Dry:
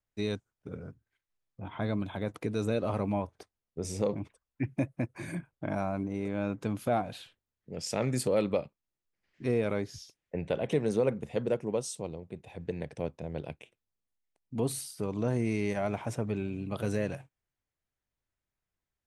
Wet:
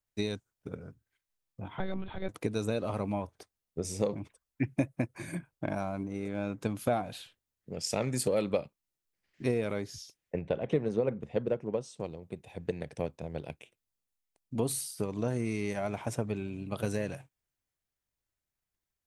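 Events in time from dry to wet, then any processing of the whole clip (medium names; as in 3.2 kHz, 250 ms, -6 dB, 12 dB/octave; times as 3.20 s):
1.78–2.29 s: monotone LPC vocoder at 8 kHz 190 Hz
10.39–12.00 s: tape spacing loss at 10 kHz 22 dB
whole clip: transient shaper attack +6 dB, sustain +2 dB; treble shelf 4.4 kHz +6.5 dB; trim -3.5 dB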